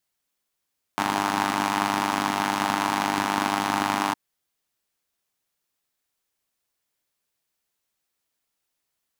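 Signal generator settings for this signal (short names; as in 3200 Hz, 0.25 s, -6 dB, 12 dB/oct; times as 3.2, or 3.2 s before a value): four-cylinder engine model, steady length 3.16 s, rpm 3000, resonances 270/860 Hz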